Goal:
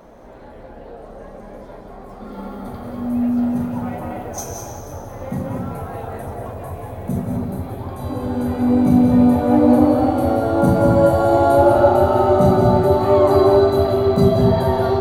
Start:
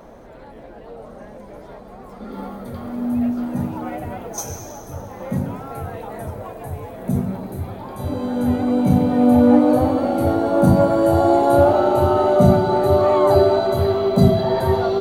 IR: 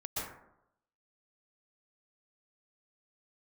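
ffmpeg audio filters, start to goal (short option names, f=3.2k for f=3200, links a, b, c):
-filter_complex "[0:a]asplit=2[a][b];[1:a]atrim=start_sample=2205,asetrate=39249,aresample=44100,adelay=40[c];[b][c]afir=irnorm=-1:irlink=0,volume=-4.5dB[d];[a][d]amix=inputs=2:normalize=0,volume=-2dB"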